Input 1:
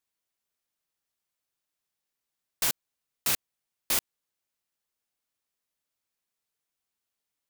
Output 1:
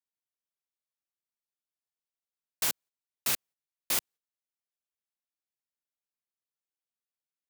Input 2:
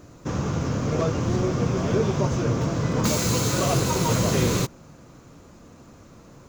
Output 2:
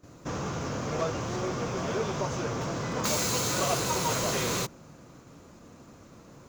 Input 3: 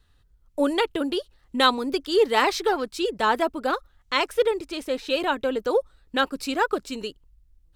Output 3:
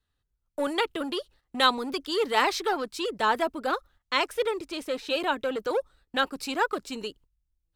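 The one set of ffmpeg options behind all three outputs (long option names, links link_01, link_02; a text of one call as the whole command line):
ffmpeg -i in.wav -filter_complex "[0:a]agate=range=-12dB:threshold=-49dB:ratio=16:detection=peak,acrossover=split=520[link_01][link_02];[link_01]asoftclip=type=hard:threshold=-30dB[link_03];[link_03][link_02]amix=inputs=2:normalize=0,lowshelf=frequency=68:gain=-7.5,volume=-2dB" out.wav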